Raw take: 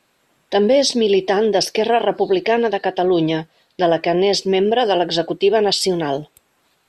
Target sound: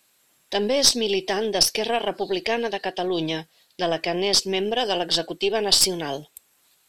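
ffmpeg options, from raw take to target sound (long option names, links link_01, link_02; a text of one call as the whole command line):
ffmpeg -i in.wav -af "crystalizer=i=5:c=0,aeval=exprs='2.66*(cos(1*acos(clip(val(0)/2.66,-1,1)))-cos(1*PI/2))+0.266*(cos(4*acos(clip(val(0)/2.66,-1,1)))-cos(4*PI/2))':channel_layout=same,volume=-9.5dB" out.wav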